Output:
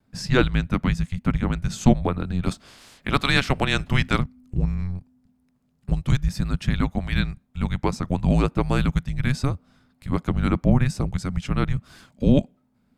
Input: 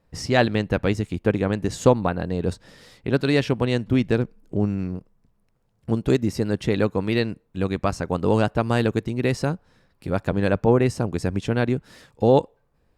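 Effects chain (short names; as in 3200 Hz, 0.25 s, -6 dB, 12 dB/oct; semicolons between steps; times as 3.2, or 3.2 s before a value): 2.43–4.19 spectral limiter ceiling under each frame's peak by 17 dB; vibrato 0.95 Hz 23 cents; frequency shift -270 Hz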